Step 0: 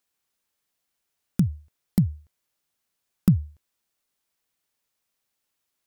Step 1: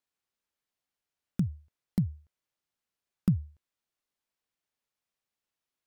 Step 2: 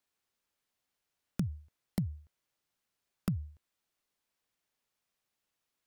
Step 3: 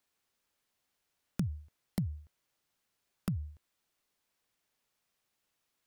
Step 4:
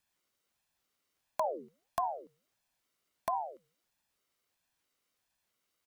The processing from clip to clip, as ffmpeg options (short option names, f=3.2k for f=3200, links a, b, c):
-af "highshelf=f=6.9k:g=-9,volume=-7dB"
-filter_complex "[0:a]acrossover=split=490|1200[a][b][c];[a]alimiter=limit=-24dB:level=0:latency=1:release=330[d];[d][b][c]amix=inputs=3:normalize=0,acompressor=threshold=-32dB:ratio=6,volume=4dB"
-af "alimiter=limit=-23.5dB:level=0:latency=1:release=214,volume=3.5dB"
-af "aecho=1:1:1.2:0.55,bandreject=f=159.6:t=h:w=4,bandreject=f=319.2:t=h:w=4,bandreject=f=478.8:t=h:w=4,bandreject=f=638.4:t=h:w=4,bandreject=f=798:t=h:w=4,aeval=exprs='val(0)*sin(2*PI*590*n/s+590*0.5/1.5*sin(2*PI*1.5*n/s))':c=same,volume=1.5dB"